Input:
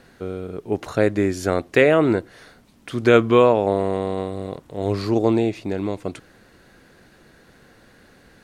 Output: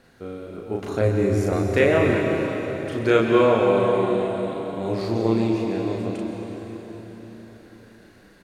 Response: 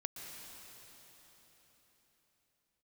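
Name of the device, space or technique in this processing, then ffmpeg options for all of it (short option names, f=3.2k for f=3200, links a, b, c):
cathedral: -filter_complex "[0:a]asettb=1/sr,asplit=3[a][b][c];[a]atrim=end=1.014[d];[b]atrim=start=1.01:end=1.53,asetpts=PTS-STARTPTS,afade=t=in:d=0.004:c=qsin,afade=t=out:st=0.516:d=0.004:c=qsin,equalizer=f=100:t=o:w=0.67:g=12,equalizer=f=1.6k:t=o:w=0.67:g=-10,equalizer=f=4k:t=o:w=0.67:g=-9[e];[c]atrim=start=1.526[f];[d][e]acrossfade=d=0.004:c1=hsin:c2=qsin[g];[g][f]acrossfade=d=0.004:c1=qsin:c2=hsin,asplit=2[h][i];[i]adelay=36,volume=-2dB[j];[h][j]amix=inputs=2:normalize=0[k];[1:a]atrim=start_sample=2205[l];[k][l]afir=irnorm=-1:irlink=0,volume=-2.5dB"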